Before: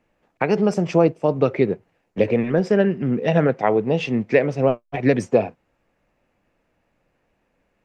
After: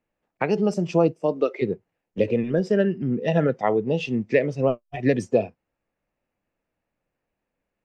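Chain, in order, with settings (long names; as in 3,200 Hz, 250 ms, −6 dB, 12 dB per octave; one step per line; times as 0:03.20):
noise reduction from a noise print of the clip's start 10 dB
0:01.21–0:01.61: high-pass filter 130 Hz → 490 Hz 24 dB per octave
level −3 dB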